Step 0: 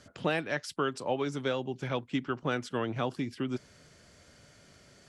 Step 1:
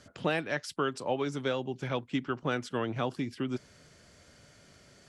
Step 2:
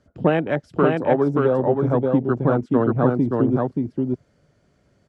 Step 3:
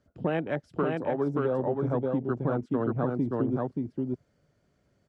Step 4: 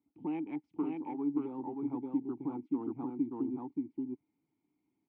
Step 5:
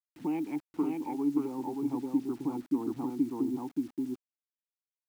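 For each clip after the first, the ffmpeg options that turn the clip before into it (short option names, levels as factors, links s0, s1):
-af anull
-af "tiltshelf=f=1500:g=7.5,afwtdn=0.0224,aecho=1:1:578:0.708,volume=2.11"
-af "alimiter=limit=0.335:level=0:latency=1:release=87,volume=0.398"
-filter_complex "[0:a]asplit=3[s0][s1][s2];[s0]bandpass=f=300:t=q:w=8,volume=1[s3];[s1]bandpass=f=870:t=q:w=8,volume=0.501[s4];[s2]bandpass=f=2240:t=q:w=8,volume=0.355[s5];[s3][s4][s5]amix=inputs=3:normalize=0,volume=1.19"
-af "acrusher=bits=9:mix=0:aa=0.000001,volume=1.58"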